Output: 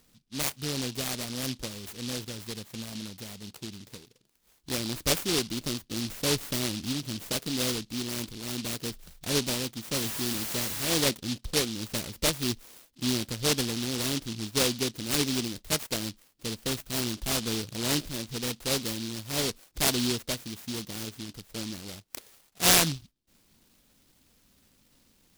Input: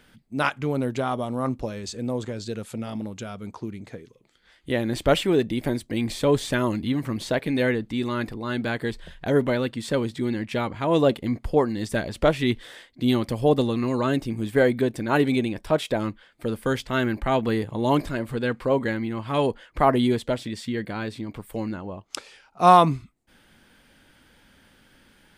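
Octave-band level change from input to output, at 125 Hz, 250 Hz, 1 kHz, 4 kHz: -7.0 dB, -8.5 dB, -14.5 dB, +5.5 dB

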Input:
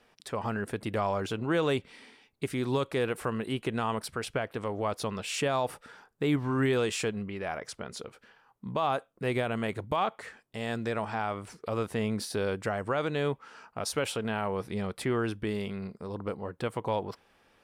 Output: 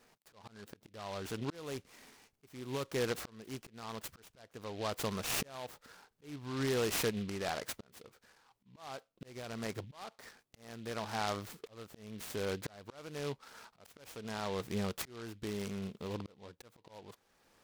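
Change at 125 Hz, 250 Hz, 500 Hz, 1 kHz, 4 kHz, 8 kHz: -9.5 dB, -9.5 dB, -9.5 dB, -11.0 dB, -5.0 dB, -2.5 dB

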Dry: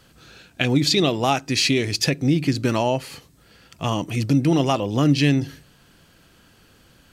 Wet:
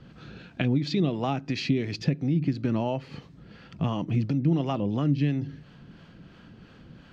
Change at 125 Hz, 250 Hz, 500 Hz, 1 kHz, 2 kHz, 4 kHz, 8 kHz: -3.5 dB, -5.5 dB, -8.5 dB, -9.5 dB, -12.0 dB, -14.5 dB, under -20 dB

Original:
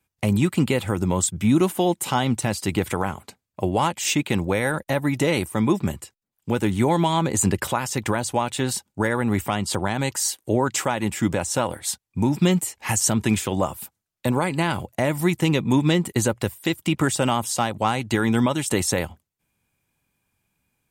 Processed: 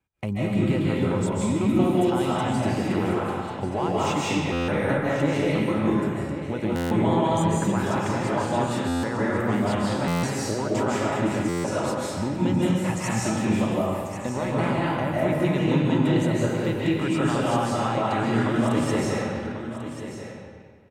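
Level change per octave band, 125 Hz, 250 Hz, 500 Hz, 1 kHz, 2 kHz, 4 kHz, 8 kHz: -1.0 dB, 0.0 dB, 0.0 dB, -1.0 dB, -2.5 dB, -5.5 dB, -11.0 dB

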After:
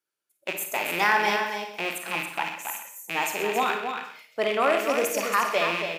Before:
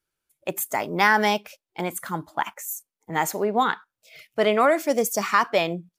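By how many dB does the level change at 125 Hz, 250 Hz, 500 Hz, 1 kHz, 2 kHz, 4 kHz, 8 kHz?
-9.0 dB, -6.5 dB, -3.0 dB, -2.5 dB, 0.0 dB, +0.5 dB, -2.0 dB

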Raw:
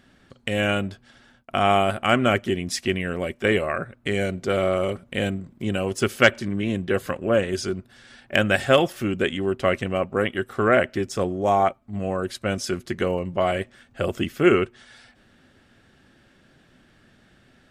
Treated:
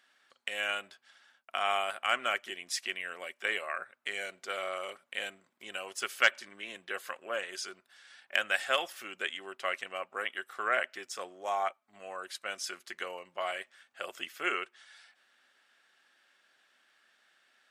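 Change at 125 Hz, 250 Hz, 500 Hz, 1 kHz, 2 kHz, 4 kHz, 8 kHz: under -35 dB, -27.5 dB, -17.0 dB, -9.5 dB, -6.5 dB, -6.0 dB, -6.0 dB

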